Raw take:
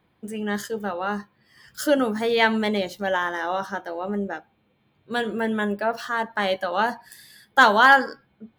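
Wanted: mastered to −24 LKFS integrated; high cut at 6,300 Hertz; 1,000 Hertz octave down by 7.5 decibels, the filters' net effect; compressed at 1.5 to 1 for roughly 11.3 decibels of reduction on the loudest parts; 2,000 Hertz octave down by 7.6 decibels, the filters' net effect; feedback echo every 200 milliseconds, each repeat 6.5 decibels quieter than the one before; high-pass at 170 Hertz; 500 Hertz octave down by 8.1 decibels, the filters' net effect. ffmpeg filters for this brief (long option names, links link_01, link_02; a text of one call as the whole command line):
ffmpeg -i in.wav -af "highpass=170,lowpass=6300,equalizer=frequency=500:width_type=o:gain=-8,equalizer=frequency=1000:width_type=o:gain=-5,equalizer=frequency=2000:width_type=o:gain=-7.5,acompressor=threshold=-49dB:ratio=1.5,aecho=1:1:200|400|600|800|1000|1200:0.473|0.222|0.105|0.0491|0.0231|0.0109,volume=14dB" out.wav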